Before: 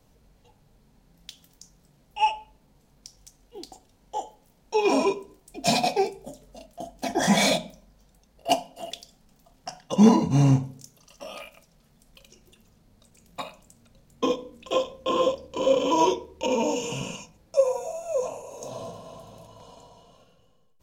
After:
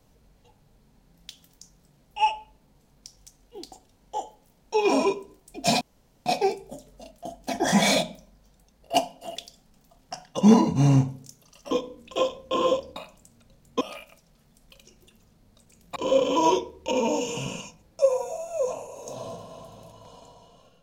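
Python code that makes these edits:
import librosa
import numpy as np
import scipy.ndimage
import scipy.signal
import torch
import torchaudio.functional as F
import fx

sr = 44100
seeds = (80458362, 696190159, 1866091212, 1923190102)

y = fx.edit(x, sr, fx.insert_room_tone(at_s=5.81, length_s=0.45),
    fx.swap(start_s=11.26, length_s=2.15, other_s=14.26, other_length_s=1.25), tone=tone)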